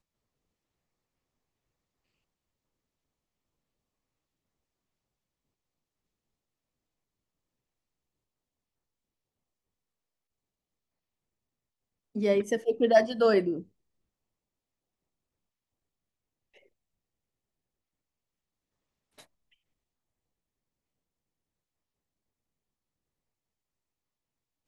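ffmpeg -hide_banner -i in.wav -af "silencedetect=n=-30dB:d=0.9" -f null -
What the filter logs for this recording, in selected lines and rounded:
silence_start: 0.00
silence_end: 12.16 | silence_duration: 12.16
silence_start: 13.59
silence_end: 24.68 | silence_duration: 11.09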